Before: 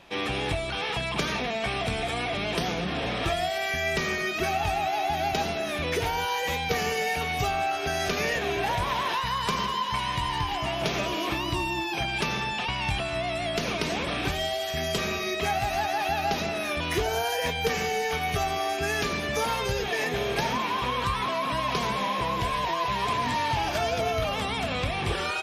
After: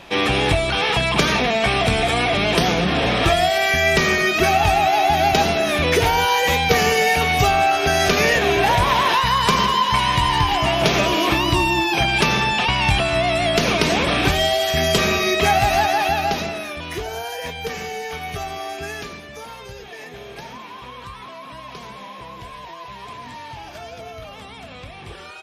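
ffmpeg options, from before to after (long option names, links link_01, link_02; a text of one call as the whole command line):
ffmpeg -i in.wav -af "volume=10.5dB,afade=type=out:start_time=15.72:duration=1.01:silence=0.251189,afade=type=out:start_time=18.8:duration=0.46:silence=0.421697" out.wav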